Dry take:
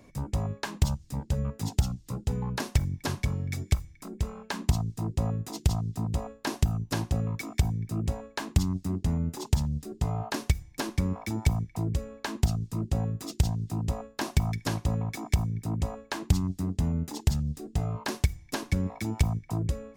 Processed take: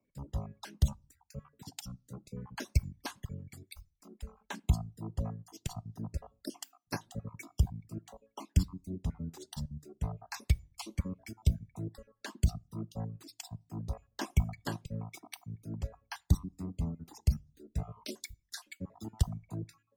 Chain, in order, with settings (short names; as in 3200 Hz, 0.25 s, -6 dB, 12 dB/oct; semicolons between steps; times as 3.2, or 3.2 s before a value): random spectral dropouts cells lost 37%; reverb removal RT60 1.1 s; on a send at -23 dB: reverb RT60 0.40 s, pre-delay 5 ms; on the sum: three-band expander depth 70%; gain -7 dB